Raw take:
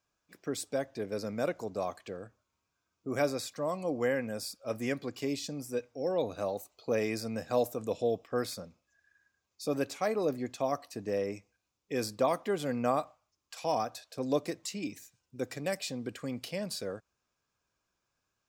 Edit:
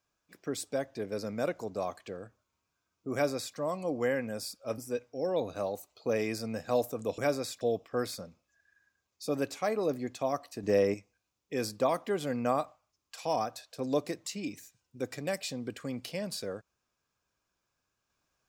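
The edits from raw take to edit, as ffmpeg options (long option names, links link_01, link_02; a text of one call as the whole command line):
ffmpeg -i in.wav -filter_complex "[0:a]asplit=6[link_01][link_02][link_03][link_04][link_05][link_06];[link_01]atrim=end=4.782[link_07];[link_02]atrim=start=5.598:end=8.002[link_08];[link_03]atrim=start=3.128:end=3.562[link_09];[link_04]atrim=start=7.998:end=11.022[link_10];[link_05]atrim=start=11.018:end=11.332,asetpts=PTS-STARTPTS,volume=6.5dB[link_11];[link_06]atrim=start=11.328[link_12];[link_07][link_08]acrossfade=duration=0.004:curve1=hsin:curve2=hsin[link_13];[link_13][link_09]acrossfade=duration=0.004:curve1=hsin:curve2=hsin[link_14];[link_14][link_10]acrossfade=duration=0.004:curve1=hsin:curve2=hsin[link_15];[link_15][link_11]acrossfade=duration=0.004:curve1=hsin:curve2=hsin[link_16];[link_16][link_12]acrossfade=duration=0.004:curve1=hsin:curve2=hsin" out.wav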